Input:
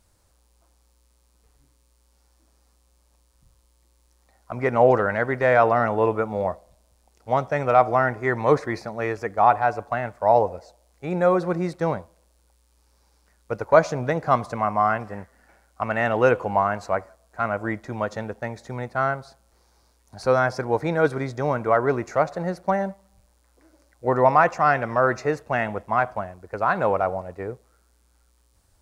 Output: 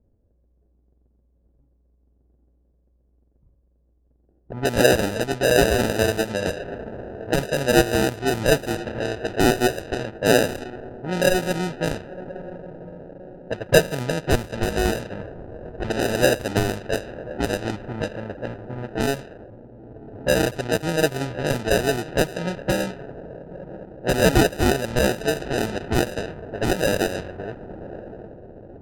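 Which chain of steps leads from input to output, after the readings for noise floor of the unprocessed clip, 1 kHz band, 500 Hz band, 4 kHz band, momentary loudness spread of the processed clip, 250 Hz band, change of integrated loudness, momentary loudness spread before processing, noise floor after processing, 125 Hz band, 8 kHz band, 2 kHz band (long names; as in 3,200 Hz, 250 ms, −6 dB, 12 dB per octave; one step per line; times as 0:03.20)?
−63 dBFS, −7.5 dB, 0.0 dB, +17.0 dB, 19 LU, +5.0 dB, 0.0 dB, 14 LU, −63 dBFS, +3.5 dB, can't be measured, +1.5 dB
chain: feedback delay with all-pass diffusion 1,093 ms, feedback 53%, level −14 dB
decimation without filtering 40×
low-pass that shuts in the quiet parts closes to 430 Hz, open at −18.5 dBFS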